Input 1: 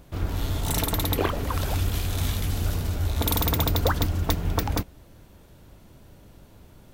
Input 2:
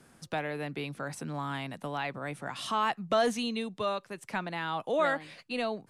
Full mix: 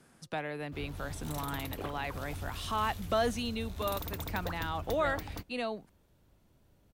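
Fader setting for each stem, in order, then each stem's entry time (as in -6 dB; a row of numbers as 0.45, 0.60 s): -16.0, -3.0 dB; 0.60, 0.00 s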